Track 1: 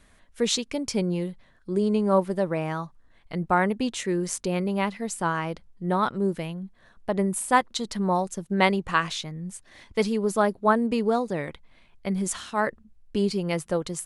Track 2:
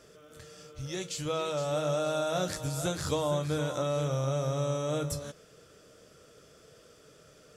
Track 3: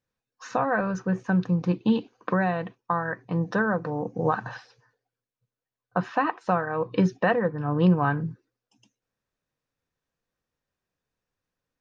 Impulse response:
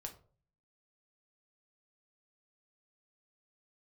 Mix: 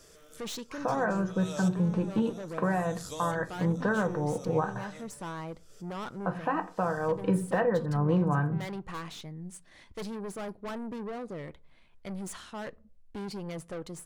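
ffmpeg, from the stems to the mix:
-filter_complex "[0:a]aeval=exprs='(tanh(31.6*val(0)+0.3)-tanh(0.3))/31.6':c=same,adynamicequalizer=threshold=0.00355:dfrequency=1900:dqfactor=0.7:tfrequency=1900:tqfactor=0.7:attack=5:release=100:ratio=0.375:range=3.5:mode=cutabove:tftype=highshelf,volume=0.501,asplit=3[s0][s1][s2];[s1]volume=0.299[s3];[1:a]bass=f=250:g=-3,treble=f=4000:g=10,alimiter=level_in=1.06:limit=0.0631:level=0:latency=1:release=281,volume=0.944,volume=0.668[s4];[2:a]lowpass=f=1600:p=1,adelay=300,volume=0.794,asplit=2[s5][s6];[s6]volume=0.708[s7];[s2]apad=whole_len=333687[s8];[s4][s8]sidechaincompress=threshold=0.00224:ratio=12:attack=8:release=208[s9];[s0][s5]amix=inputs=2:normalize=0,alimiter=limit=0.0708:level=0:latency=1:release=339,volume=1[s10];[3:a]atrim=start_sample=2205[s11];[s3][s7]amix=inputs=2:normalize=0[s12];[s12][s11]afir=irnorm=-1:irlink=0[s13];[s9][s10][s13]amix=inputs=3:normalize=0"

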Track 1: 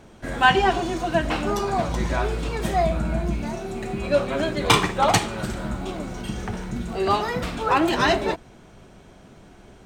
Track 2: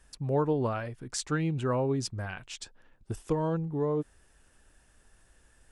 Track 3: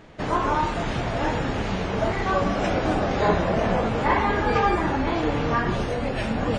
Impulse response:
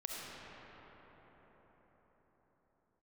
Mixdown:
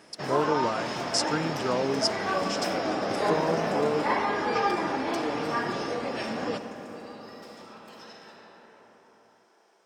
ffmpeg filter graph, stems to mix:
-filter_complex "[0:a]highpass=f=1200:p=1,highshelf=f=7500:g=7,acompressor=threshold=0.02:ratio=6,volume=0.282,asplit=2[s0][s1];[s1]volume=0.668[s2];[1:a]volume=1.19,asplit=2[s3][s4];[2:a]volume=0.422,asplit=2[s5][s6];[s6]volume=0.531[s7];[s4]apad=whole_len=434527[s8];[s0][s8]sidechaingate=range=0.0224:threshold=0.00178:ratio=16:detection=peak[s9];[3:a]atrim=start_sample=2205[s10];[s2][s7]amix=inputs=2:normalize=0[s11];[s11][s10]afir=irnorm=-1:irlink=0[s12];[s9][s3][s5][s12]amix=inputs=4:normalize=0,highpass=230,equalizer=f=5200:w=6:g=14.5"

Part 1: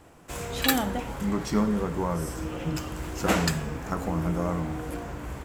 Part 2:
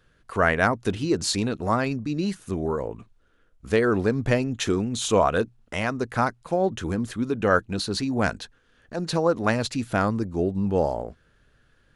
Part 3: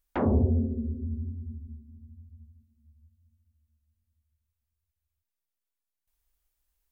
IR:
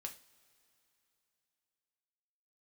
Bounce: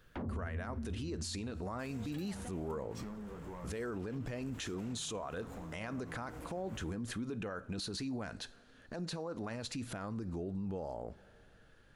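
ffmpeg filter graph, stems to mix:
-filter_complex "[0:a]acompressor=threshold=0.0316:ratio=6,asoftclip=type=tanh:threshold=0.0335,adelay=1500,volume=0.316[s0];[1:a]acompressor=threshold=0.0708:ratio=6,volume=0.631,asplit=2[s1][s2];[s2]volume=0.531[s3];[2:a]acrossover=split=230|3000[s4][s5][s6];[s5]acompressor=threshold=0.00126:ratio=1.5[s7];[s4][s7][s6]amix=inputs=3:normalize=0,volume=0.841[s8];[3:a]atrim=start_sample=2205[s9];[s3][s9]afir=irnorm=-1:irlink=0[s10];[s0][s1][s8][s10]amix=inputs=4:normalize=0,alimiter=level_in=2.51:limit=0.0631:level=0:latency=1:release=93,volume=0.398"

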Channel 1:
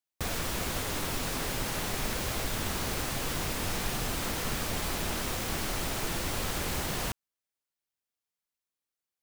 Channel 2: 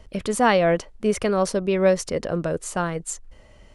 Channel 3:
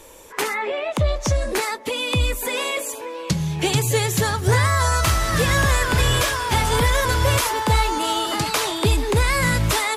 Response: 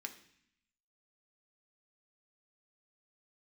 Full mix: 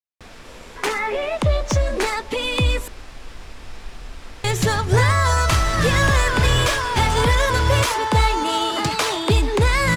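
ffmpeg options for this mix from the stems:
-filter_complex "[0:a]asubboost=boost=7:cutoff=61,volume=0.316,asplit=2[s0][s1];[s1]volume=0.596[s2];[2:a]adelay=450,volume=1.19,asplit=3[s3][s4][s5];[s3]atrim=end=2.88,asetpts=PTS-STARTPTS,afade=t=out:st=2.876:d=0.004:c=hsin[s6];[s4]atrim=start=2.88:end=4.44,asetpts=PTS-STARTPTS,volume=0[s7];[s5]atrim=start=4.44,asetpts=PTS-STARTPTS,afade=t=in:d=0.004:c=hsin[s8];[s6][s7][s8]concat=n=3:v=0:a=1[s9];[3:a]atrim=start_sample=2205[s10];[s2][s10]afir=irnorm=-1:irlink=0[s11];[s0][s9][s11]amix=inputs=3:normalize=0,adynamicsmooth=sensitivity=2:basefreq=6300"

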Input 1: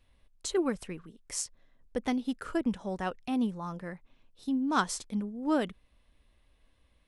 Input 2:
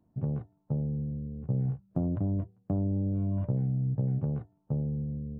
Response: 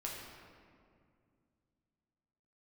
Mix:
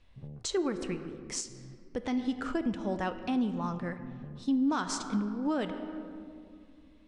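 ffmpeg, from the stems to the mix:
-filter_complex "[0:a]lowpass=f=7500:w=0.5412,lowpass=f=7500:w=1.3066,volume=1.12,asplit=3[s0][s1][s2];[s1]volume=0.447[s3];[1:a]volume=0.2[s4];[s2]apad=whole_len=238005[s5];[s4][s5]sidechaincompress=threshold=0.00501:ratio=8:attack=16:release=390[s6];[2:a]atrim=start_sample=2205[s7];[s3][s7]afir=irnorm=-1:irlink=0[s8];[s0][s6][s8]amix=inputs=3:normalize=0,alimiter=limit=0.0841:level=0:latency=1:release=148"

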